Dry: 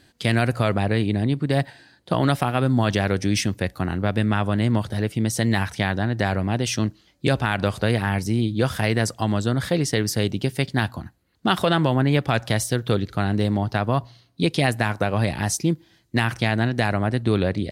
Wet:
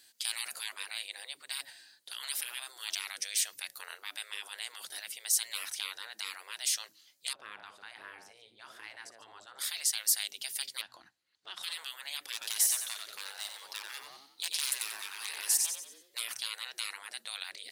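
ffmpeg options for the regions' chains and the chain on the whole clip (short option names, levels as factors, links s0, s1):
-filter_complex "[0:a]asettb=1/sr,asplit=3[s0][s1][s2];[s0]atrim=end=7.334[s3];[s1]atrim=start=7.33:end=9.59,asetpts=PTS-STARTPTS,afade=t=in:d=0.004:c=qsin,afade=t=out:st=2.256:d=0.004:c=qsin,bandpass=f=620:t=q:w=1.3,aecho=1:1:59|145:0.158|0.2,atrim=end_sample=99666[s4];[s2]atrim=start=9.586[s5];[s3][s4]acrossfade=d=0.004:c1=hsin:c2=qsin[s6];[s6][s5]acrossfade=d=0.004:c1=qsin:c2=hsin,asettb=1/sr,asplit=3[s7][s8][s9];[s7]atrim=end=10.814[s10];[s8]atrim=start=10.81:end=11.63,asetpts=PTS-STARTPTS,afade=t=in:d=0.004:c=qsin,afade=t=out:st=0.816:d=0.004:c=qsin,lowpass=4700,acompressor=threshold=0.0398:ratio=6:attack=3.2:release=140:knee=1:detection=peak[s11];[s9]atrim=start=11.626[s12];[s10][s11]acrossfade=d=0.004:c1=hsin:c2=qsin[s13];[s13][s12]acrossfade=d=0.004:c1=qsin:c2=hsin,asettb=1/sr,asplit=3[s14][s15][s16];[s14]atrim=end=12.324[s17];[s15]atrim=start=12.32:end=16.15,asetpts=PTS-STARTPTS,afade=t=in:d=0.004:c=qsin,afade=t=out:st=3.826:d=0.004:c=qsin,asoftclip=type=hard:threshold=0.224,asplit=6[s18][s19][s20][s21][s22][s23];[s19]adelay=91,afreqshift=47,volume=0.422[s24];[s20]adelay=182,afreqshift=94,volume=0.168[s25];[s21]adelay=273,afreqshift=141,volume=0.0676[s26];[s22]adelay=364,afreqshift=188,volume=0.0269[s27];[s23]adelay=455,afreqshift=235,volume=0.0108[s28];[s18][s24][s25][s26][s27][s28]amix=inputs=6:normalize=0,atrim=end_sample=168903[s29];[s16]atrim=start=16.146[s30];[s17][s29]acrossfade=d=0.004:c1=hsin:c2=qsin[s31];[s31][s30]acrossfade=d=0.004:c1=qsin:c2=hsin,afftfilt=real='re*lt(hypot(re,im),0.1)':imag='im*lt(hypot(re,im),0.1)':win_size=1024:overlap=0.75,aderivative,volume=1.5"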